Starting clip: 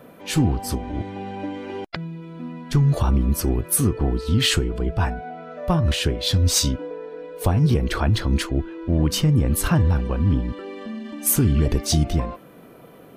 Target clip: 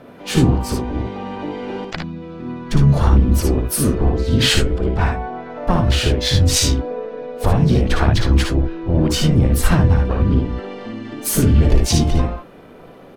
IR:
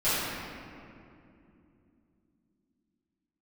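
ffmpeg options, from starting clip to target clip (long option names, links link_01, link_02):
-filter_complex "[0:a]asubboost=boost=3:cutoff=53,adynamicsmooth=sensitivity=4.5:basefreq=7700,asplit=4[link_01][link_02][link_03][link_04];[link_02]asetrate=22050,aresample=44100,atempo=2,volume=-12dB[link_05];[link_03]asetrate=52444,aresample=44100,atempo=0.840896,volume=-10dB[link_06];[link_04]asetrate=66075,aresample=44100,atempo=0.66742,volume=-11dB[link_07];[link_01][link_05][link_06][link_07]amix=inputs=4:normalize=0,asplit=2[link_08][link_09];[link_09]aecho=0:1:57|73:0.562|0.376[link_10];[link_08][link_10]amix=inputs=2:normalize=0,volume=2.5dB"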